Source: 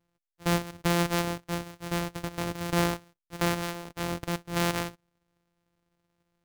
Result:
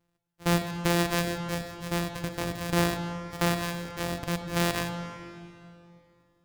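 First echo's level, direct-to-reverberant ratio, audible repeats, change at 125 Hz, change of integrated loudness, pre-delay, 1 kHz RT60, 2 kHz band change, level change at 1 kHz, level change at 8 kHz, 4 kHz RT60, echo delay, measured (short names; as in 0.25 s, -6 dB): none, 6.5 dB, none, +1.5 dB, +1.0 dB, 24 ms, 2.4 s, +1.5 dB, 0.0 dB, +1.0 dB, 2.2 s, none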